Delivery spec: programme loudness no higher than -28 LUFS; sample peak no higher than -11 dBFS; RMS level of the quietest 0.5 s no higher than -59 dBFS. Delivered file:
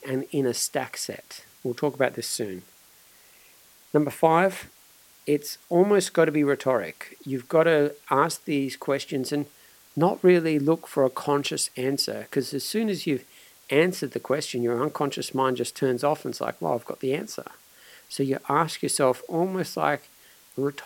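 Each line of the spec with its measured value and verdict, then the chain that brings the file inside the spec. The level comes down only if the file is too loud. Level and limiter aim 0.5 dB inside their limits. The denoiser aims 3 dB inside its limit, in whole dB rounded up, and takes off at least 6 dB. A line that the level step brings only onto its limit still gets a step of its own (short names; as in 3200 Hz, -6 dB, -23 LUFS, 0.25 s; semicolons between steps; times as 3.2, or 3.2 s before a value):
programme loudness -25.5 LUFS: fail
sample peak -5.0 dBFS: fail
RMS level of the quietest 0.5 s -55 dBFS: fail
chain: denoiser 6 dB, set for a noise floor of -55 dBFS; gain -3 dB; limiter -11.5 dBFS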